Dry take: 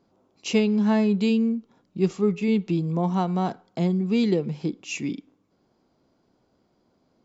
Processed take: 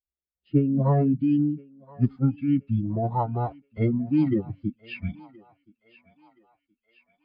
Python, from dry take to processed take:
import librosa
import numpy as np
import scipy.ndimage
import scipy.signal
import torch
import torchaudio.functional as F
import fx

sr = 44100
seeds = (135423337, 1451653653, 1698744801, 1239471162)

p1 = fx.bin_expand(x, sr, power=2.0)
p2 = fx.pitch_keep_formants(p1, sr, semitones=-7.5)
p3 = fx.filter_sweep_lowpass(p2, sr, from_hz=550.0, to_hz=2100.0, start_s=0.49, end_s=1.88, q=0.79)
p4 = p3 + fx.echo_thinned(p3, sr, ms=1023, feedback_pct=62, hz=720.0, wet_db=-18, dry=0)
y = p4 * librosa.db_to_amplitude(3.0)